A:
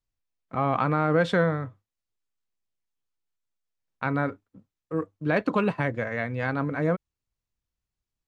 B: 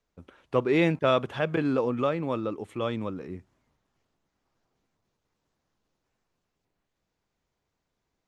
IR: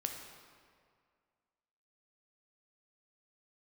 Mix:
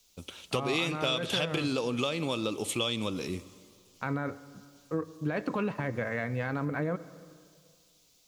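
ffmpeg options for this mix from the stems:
-filter_complex "[0:a]alimiter=limit=-17.5dB:level=0:latency=1:release=23,volume=-2.5dB,asplit=2[link_01][link_02];[link_02]volume=-11dB[link_03];[1:a]acompressor=threshold=-28dB:ratio=2,aexciter=amount=8.3:drive=5.8:freq=2600,volume=1.5dB,asplit=2[link_04][link_05];[link_05]volume=-11.5dB[link_06];[2:a]atrim=start_sample=2205[link_07];[link_03][link_06]amix=inputs=2:normalize=0[link_08];[link_08][link_07]afir=irnorm=-1:irlink=0[link_09];[link_01][link_04][link_09]amix=inputs=3:normalize=0,acompressor=threshold=-27dB:ratio=4"

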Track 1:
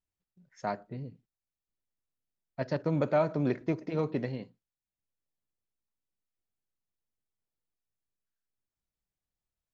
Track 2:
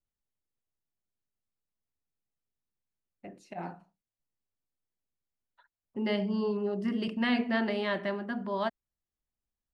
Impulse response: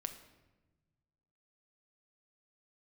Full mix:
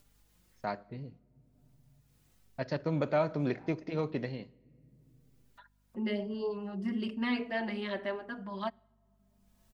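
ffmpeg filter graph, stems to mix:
-filter_complex "[0:a]lowpass=4700,agate=range=-41dB:threshold=-51dB:ratio=16:detection=peak,highshelf=frequency=2900:gain=10,volume=-4.5dB,asplit=3[link_01][link_02][link_03];[link_02]volume=-11.5dB[link_04];[1:a]asplit=2[link_05][link_06];[link_06]adelay=4.6,afreqshift=1.1[link_07];[link_05][link_07]amix=inputs=2:normalize=1,volume=-2dB,asplit=2[link_08][link_09];[link_09]volume=-18dB[link_10];[link_03]apad=whole_len=429469[link_11];[link_08][link_11]sidechaincompress=threshold=-45dB:ratio=8:attack=48:release=972[link_12];[2:a]atrim=start_sample=2205[link_13];[link_04][link_10]amix=inputs=2:normalize=0[link_14];[link_14][link_13]afir=irnorm=-1:irlink=0[link_15];[link_01][link_12][link_15]amix=inputs=3:normalize=0,acompressor=mode=upward:threshold=-46dB:ratio=2.5,aeval=exprs='val(0)+0.000316*(sin(2*PI*50*n/s)+sin(2*PI*2*50*n/s)/2+sin(2*PI*3*50*n/s)/3+sin(2*PI*4*50*n/s)/4+sin(2*PI*5*50*n/s)/5)':channel_layout=same"

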